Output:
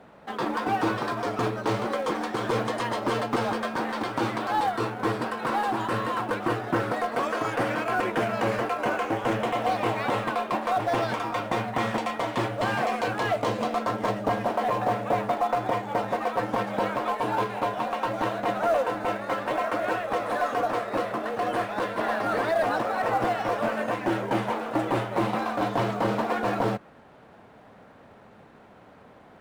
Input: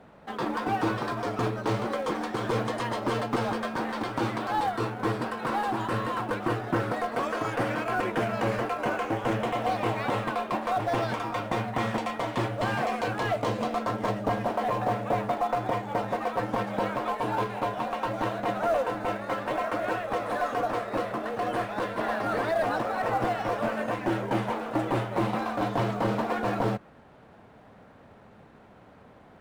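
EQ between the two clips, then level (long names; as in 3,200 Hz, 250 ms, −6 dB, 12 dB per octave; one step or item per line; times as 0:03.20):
low-shelf EQ 150 Hz −6.5 dB
+2.5 dB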